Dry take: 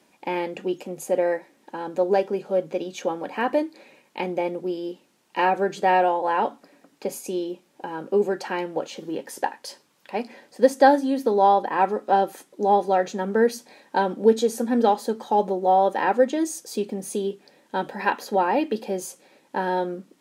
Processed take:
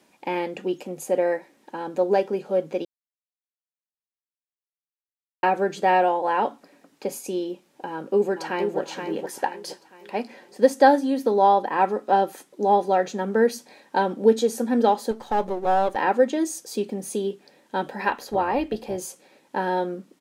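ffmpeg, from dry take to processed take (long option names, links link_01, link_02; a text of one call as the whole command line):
ffmpeg -i in.wav -filter_complex "[0:a]asplit=2[link_01][link_02];[link_02]afade=type=in:start_time=7.89:duration=0.01,afade=type=out:start_time=8.79:duration=0.01,aecho=0:1:470|940|1410|1880|2350:0.473151|0.189261|0.0757042|0.0302817|0.0121127[link_03];[link_01][link_03]amix=inputs=2:normalize=0,asettb=1/sr,asplit=3[link_04][link_05][link_06];[link_04]atrim=end=15.114[link_07];[link_05]atrim=start=15.11:end=15.96,asetpts=PTS-STARTPTS,afade=type=in:duration=0.004:curve=qsin,afade=type=out:start_time=0.846:duration=0.004:curve=qsin,aeval=exprs='if(lt(val(0),0),0.447*val(0),val(0))':channel_layout=same[link_08];[link_06]atrim=start=15.956[link_09];[link_07][link_08]acrossfade=duration=0.004:curve1=hsin:curve2=qsin[link_10];[link_10][link_09]acrossfade=duration=0.004:curve1=qsin:curve2=hsin,asettb=1/sr,asplit=3[link_11][link_12][link_13];[link_11]atrim=end=18.084[link_14];[link_12]atrim=start=18.08:end=18.98,asetpts=PTS-STARTPTS,afade=type=in:duration=0.004:curve=qsin,afade=type=out:start_time=0.896:duration=0.004:curve=qsin,tremolo=f=260:d=0.462[link_15];[link_13]atrim=start=18.976[link_16];[link_14][link_15]acrossfade=duration=0.004:curve1=hsin:curve2=qsin[link_17];[link_17][link_16]acrossfade=duration=0.004:curve1=qsin:curve2=hsin,asplit=3[link_18][link_19][link_20];[link_18]atrim=end=2.85,asetpts=PTS-STARTPTS,afade=type=out:start_time=2.846:duration=0.004:curve=hsin[link_21];[link_19]atrim=start=2.85:end=5.43,asetpts=PTS-STARTPTS,volume=0[link_22];[link_20]atrim=start=5.43,asetpts=PTS-STARTPTS,afade=type=in:duration=0.004:curve=hsin[link_23];[link_21][link_22][link_23]concat=n=3:v=0:a=1" out.wav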